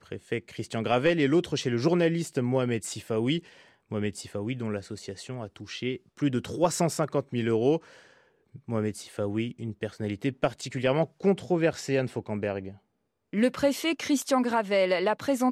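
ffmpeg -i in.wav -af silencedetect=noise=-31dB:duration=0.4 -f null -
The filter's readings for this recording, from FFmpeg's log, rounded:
silence_start: 3.39
silence_end: 3.92 | silence_duration: 0.53
silence_start: 7.77
silence_end: 8.69 | silence_duration: 0.92
silence_start: 12.68
silence_end: 13.33 | silence_duration: 0.65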